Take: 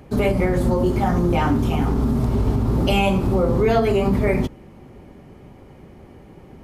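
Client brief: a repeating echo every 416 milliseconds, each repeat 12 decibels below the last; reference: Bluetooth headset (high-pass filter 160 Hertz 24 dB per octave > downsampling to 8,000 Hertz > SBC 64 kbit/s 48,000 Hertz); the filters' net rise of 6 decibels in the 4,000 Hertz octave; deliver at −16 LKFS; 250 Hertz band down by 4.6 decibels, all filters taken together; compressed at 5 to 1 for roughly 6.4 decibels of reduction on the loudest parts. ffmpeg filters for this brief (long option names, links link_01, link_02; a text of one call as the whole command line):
ffmpeg -i in.wav -af "equalizer=frequency=250:width_type=o:gain=-5.5,equalizer=frequency=4000:width_type=o:gain=9,acompressor=threshold=-22dB:ratio=5,highpass=frequency=160:width=0.5412,highpass=frequency=160:width=1.3066,aecho=1:1:416|832|1248:0.251|0.0628|0.0157,aresample=8000,aresample=44100,volume=12dB" -ar 48000 -c:a sbc -b:a 64k out.sbc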